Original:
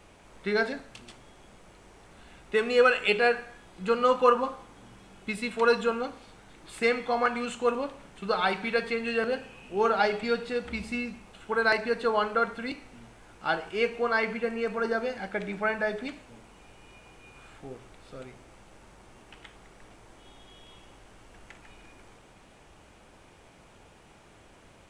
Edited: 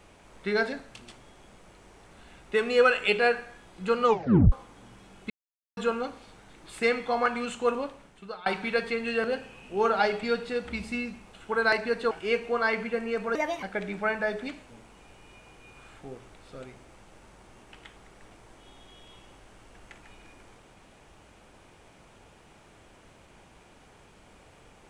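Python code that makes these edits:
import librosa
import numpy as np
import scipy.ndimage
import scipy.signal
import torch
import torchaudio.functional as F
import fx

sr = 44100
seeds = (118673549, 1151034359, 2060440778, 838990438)

y = fx.edit(x, sr, fx.tape_stop(start_s=4.05, length_s=0.47),
    fx.silence(start_s=5.3, length_s=0.47),
    fx.fade_out_to(start_s=7.77, length_s=0.69, floor_db=-22.5),
    fx.cut(start_s=12.11, length_s=1.5),
    fx.speed_span(start_s=14.85, length_s=0.37, speed=1.34), tone=tone)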